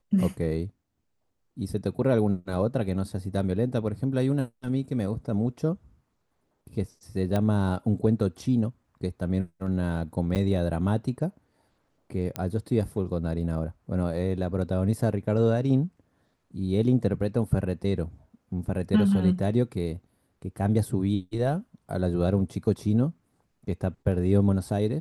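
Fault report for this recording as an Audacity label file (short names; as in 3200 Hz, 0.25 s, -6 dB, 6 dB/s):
7.360000	7.360000	pop -15 dBFS
10.350000	10.360000	gap 8.8 ms
12.360000	12.360000	pop -14 dBFS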